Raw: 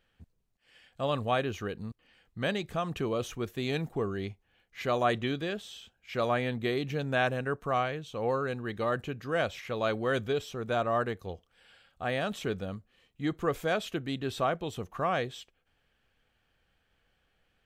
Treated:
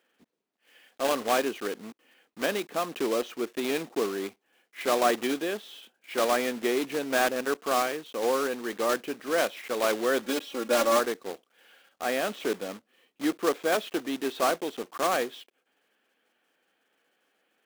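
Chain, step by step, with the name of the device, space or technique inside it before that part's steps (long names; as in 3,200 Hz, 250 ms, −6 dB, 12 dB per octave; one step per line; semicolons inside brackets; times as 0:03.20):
de-essing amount 90%
early digital voice recorder (band-pass filter 210–3,700 Hz; one scale factor per block 3 bits)
0:10.22–0:10.99: comb filter 3.6 ms, depth 83%
low shelf with overshoot 180 Hz −13.5 dB, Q 1.5
level +2.5 dB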